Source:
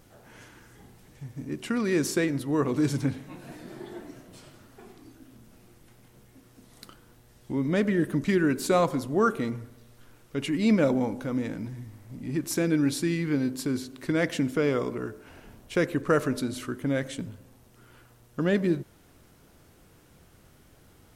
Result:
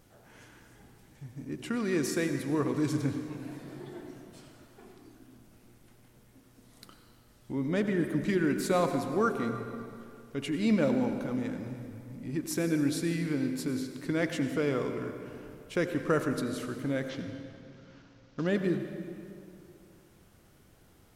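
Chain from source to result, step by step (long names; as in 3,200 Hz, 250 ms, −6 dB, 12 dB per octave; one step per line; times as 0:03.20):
0:17.09–0:18.47: variable-slope delta modulation 32 kbit/s
on a send: convolution reverb RT60 2.5 s, pre-delay 76 ms, DRR 7 dB
on the sum: level −4.5 dB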